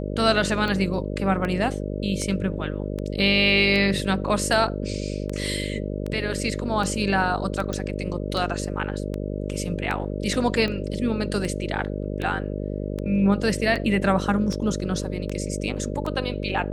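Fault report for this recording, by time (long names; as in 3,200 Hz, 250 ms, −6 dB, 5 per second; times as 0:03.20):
mains buzz 50 Hz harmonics 12 −29 dBFS
scratch tick 78 rpm −17 dBFS
0:07.73: click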